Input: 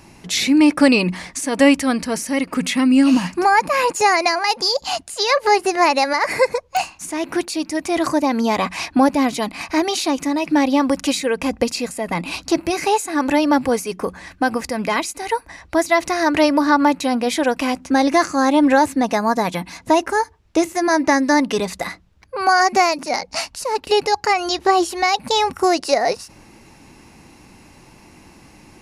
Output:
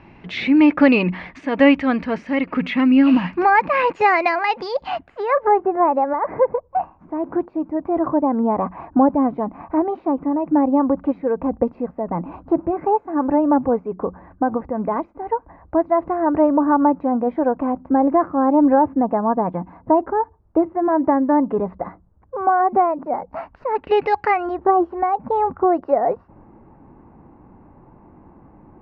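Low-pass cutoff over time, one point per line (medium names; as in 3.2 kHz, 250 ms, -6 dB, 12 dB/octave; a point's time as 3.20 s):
low-pass 24 dB/octave
4.74 s 2.8 kHz
5.70 s 1.1 kHz
23.18 s 1.1 kHz
24.18 s 2.8 kHz
24.60 s 1.2 kHz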